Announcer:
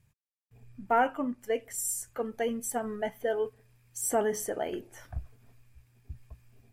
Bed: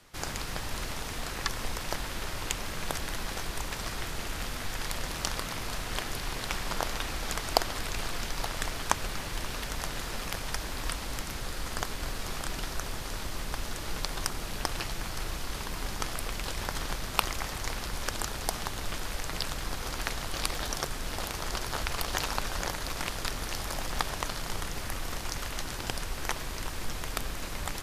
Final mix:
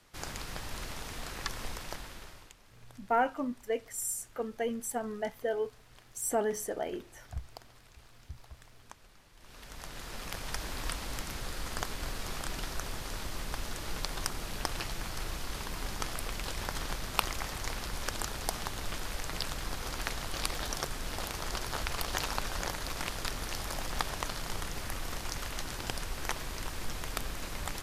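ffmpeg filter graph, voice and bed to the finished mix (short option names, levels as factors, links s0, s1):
-filter_complex "[0:a]adelay=2200,volume=0.75[s0];[1:a]volume=7.08,afade=t=out:st=1.67:d=0.86:silence=0.105925,afade=t=in:st=9.37:d=1.28:silence=0.0794328[s1];[s0][s1]amix=inputs=2:normalize=0"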